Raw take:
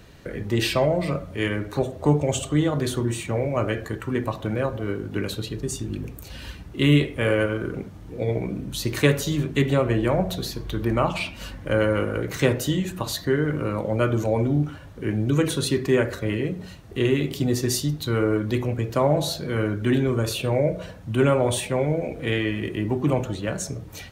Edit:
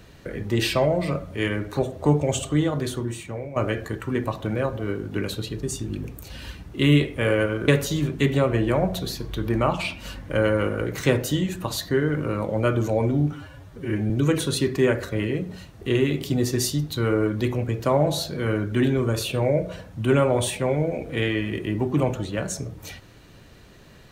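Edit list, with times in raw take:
2.52–3.56 s: fade out, to -11 dB
7.68–9.04 s: delete
14.68–15.20 s: stretch 1.5×

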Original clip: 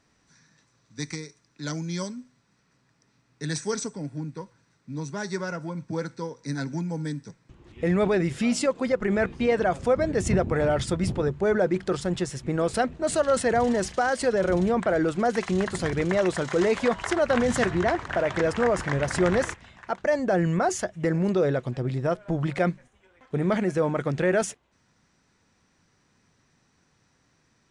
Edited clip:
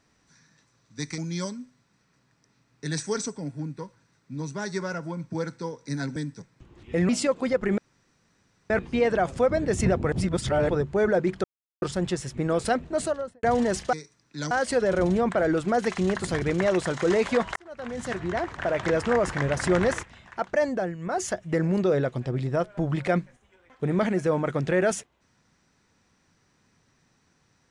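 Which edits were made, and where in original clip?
1.18–1.76 s: move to 14.02 s
6.74–7.05 s: delete
7.98–8.48 s: delete
9.17 s: insert room tone 0.92 s
10.59–11.16 s: reverse
11.91 s: insert silence 0.38 s
12.98–13.52 s: studio fade out
17.07–18.40 s: fade in
20.17–20.79 s: dip -15 dB, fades 0.30 s

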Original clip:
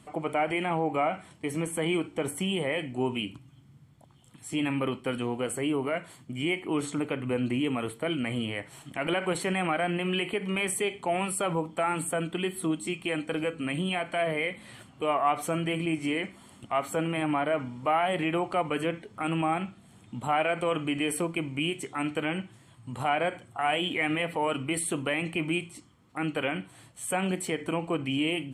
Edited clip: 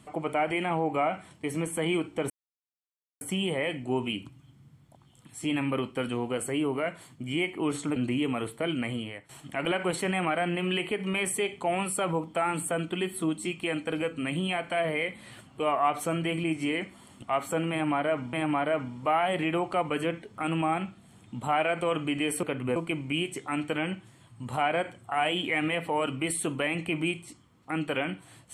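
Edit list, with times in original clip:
2.30 s: insert silence 0.91 s
7.05–7.38 s: move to 21.23 s
8.24–8.71 s: fade out linear, to -14 dB
17.13–17.75 s: loop, 2 plays

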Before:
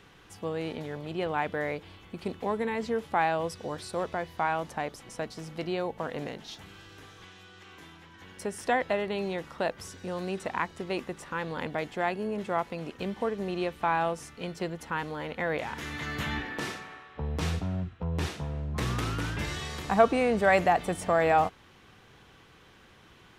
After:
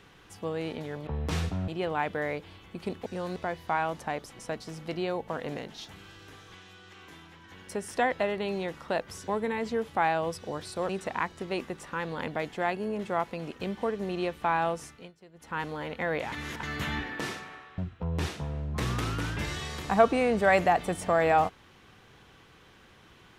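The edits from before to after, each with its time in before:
2.45–4.06 s: swap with 9.98–10.28 s
14.23–15.00 s: dip -21 dB, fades 0.28 s
15.71–16.02 s: reverse
17.17–17.78 s: move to 1.07 s

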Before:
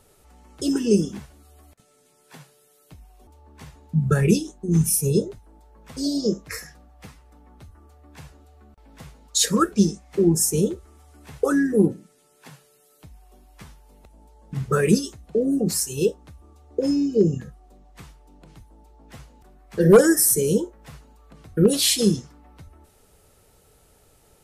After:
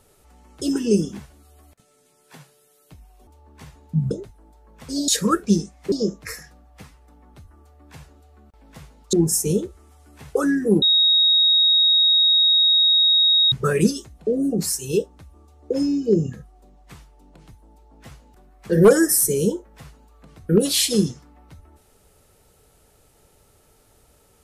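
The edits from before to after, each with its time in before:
4.11–5.19 s: delete
9.37–10.21 s: move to 6.16 s
11.90–14.60 s: bleep 3.77 kHz -13 dBFS

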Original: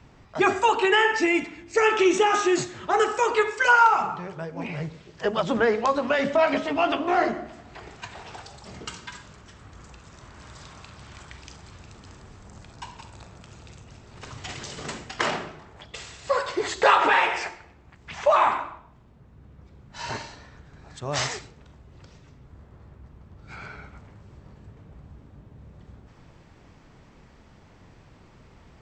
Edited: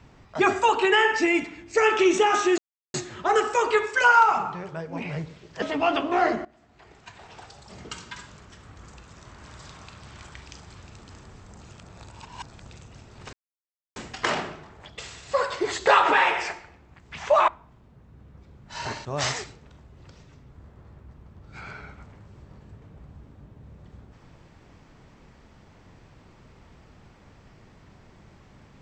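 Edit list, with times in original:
2.58 s: insert silence 0.36 s
5.26–6.58 s: delete
7.41–9.14 s: fade in, from -18 dB
12.57–13.63 s: reverse
14.29–14.92 s: mute
18.44–18.72 s: delete
20.29–21.00 s: delete

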